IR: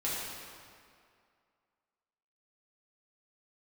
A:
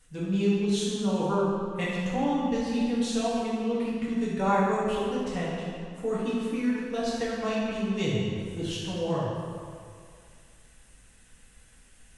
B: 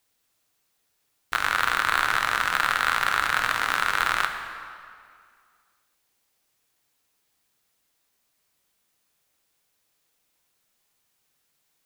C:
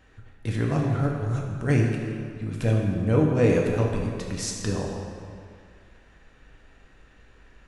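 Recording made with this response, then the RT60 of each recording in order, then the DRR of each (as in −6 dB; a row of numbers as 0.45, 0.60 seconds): A; 2.3, 2.2, 2.2 seconds; −8.0, 4.5, −1.0 decibels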